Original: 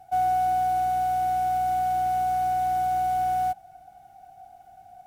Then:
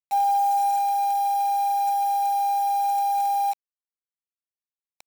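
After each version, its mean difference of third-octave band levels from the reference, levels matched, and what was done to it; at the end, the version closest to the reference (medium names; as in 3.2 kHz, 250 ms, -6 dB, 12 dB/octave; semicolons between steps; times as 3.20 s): 8.0 dB: formants replaced by sine waves; in parallel at +1.5 dB: compression 4:1, threshold -40 dBFS, peak gain reduction 15.5 dB; on the sum: frequency shift +63 Hz; bit crusher 6-bit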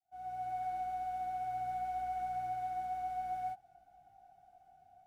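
3.0 dB: fade-in on the opening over 0.64 s; treble shelf 7.7 kHz -10.5 dB; saturation -20 dBFS, distortion -24 dB; detune thickener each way 17 cents; trim -8.5 dB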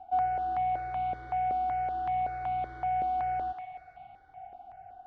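6.0 dB: low-pass 3.2 kHz 24 dB/octave; in parallel at -1 dB: compression, threshold -42 dBFS, peak gain reduction 18.5 dB; on the sum: thinning echo 136 ms, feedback 75%, high-pass 680 Hz, level -6.5 dB; stepped phaser 5.3 Hz 500–1700 Hz; trim -3 dB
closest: second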